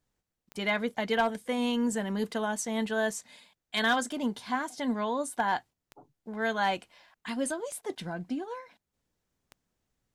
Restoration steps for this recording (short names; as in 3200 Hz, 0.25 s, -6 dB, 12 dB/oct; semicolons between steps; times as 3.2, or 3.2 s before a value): clip repair -19 dBFS; de-click